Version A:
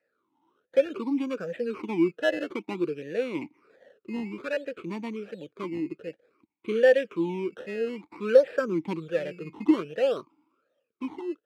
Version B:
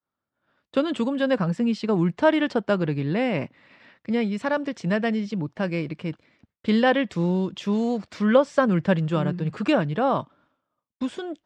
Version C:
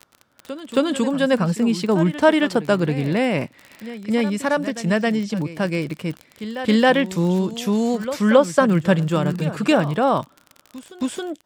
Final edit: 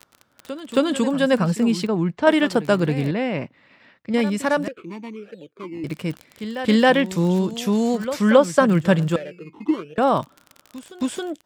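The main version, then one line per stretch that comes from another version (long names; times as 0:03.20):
C
0:01.87–0:02.27: punch in from B
0:03.11–0:04.14: punch in from B
0:04.68–0:05.84: punch in from A
0:09.16–0:09.98: punch in from A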